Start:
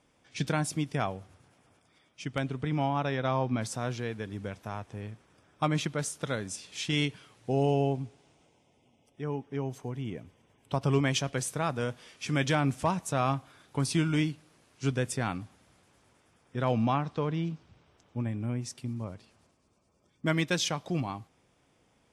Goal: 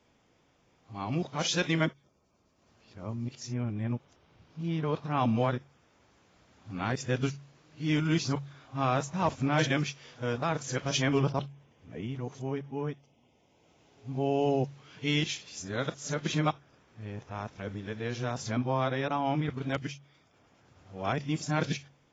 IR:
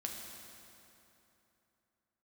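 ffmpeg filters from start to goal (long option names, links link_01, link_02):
-af "areverse,bandreject=frequency=46.76:width_type=h:width=4,bandreject=frequency=93.52:width_type=h:width=4,bandreject=frequency=140.28:width_type=h:width=4" -ar 16000 -c:a aac -b:a 24k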